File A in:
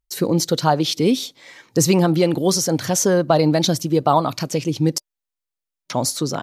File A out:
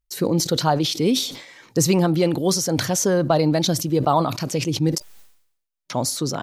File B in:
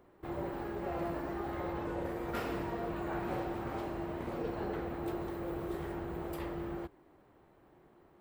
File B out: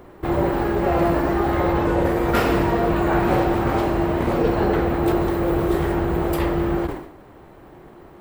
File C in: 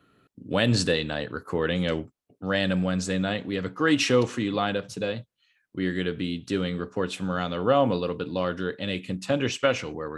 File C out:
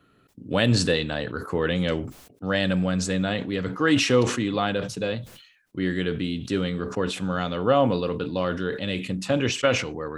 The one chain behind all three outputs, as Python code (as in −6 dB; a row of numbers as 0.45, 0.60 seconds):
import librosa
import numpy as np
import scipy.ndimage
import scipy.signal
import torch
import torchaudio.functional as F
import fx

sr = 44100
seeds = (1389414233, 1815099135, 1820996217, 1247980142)

y = fx.low_shelf(x, sr, hz=66.0, db=5.5)
y = fx.sustainer(y, sr, db_per_s=82.0)
y = librosa.util.normalize(y) * 10.0 ** (-6 / 20.0)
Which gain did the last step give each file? −3.0, +17.5, +1.0 decibels